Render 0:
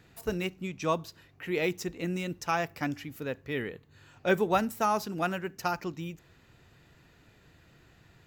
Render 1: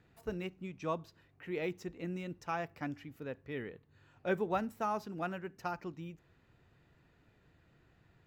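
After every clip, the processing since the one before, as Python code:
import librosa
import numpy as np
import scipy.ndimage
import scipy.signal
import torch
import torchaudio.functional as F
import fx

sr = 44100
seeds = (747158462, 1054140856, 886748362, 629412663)

y = fx.high_shelf(x, sr, hz=3700.0, db=-12.0)
y = F.gain(torch.from_numpy(y), -7.0).numpy()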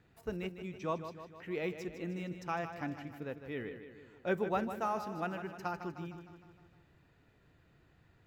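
y = fx.echo_feedback(x, sr, ms=154, feedback_pct=58, wet_db=-10.0)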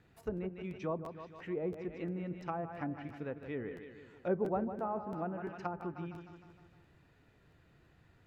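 y = fx.env_lowpass_down(x, sr, base_hz=800.0, full_db=-34.0)
y = fx.buffer_crackle(y, sr, first_s=0.36, period_s=0.34, block=512, kind='repeat')
y = F.gain(torch.from_numpy(y), 1.0).numpy()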